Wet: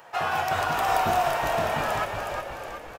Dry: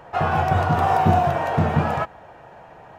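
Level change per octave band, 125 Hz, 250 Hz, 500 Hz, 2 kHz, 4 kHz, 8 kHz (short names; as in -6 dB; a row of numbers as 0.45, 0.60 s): -15.5 dB, -12.5 dB, -3.5 dB, +0.5 dB, +4.5 dB, n/a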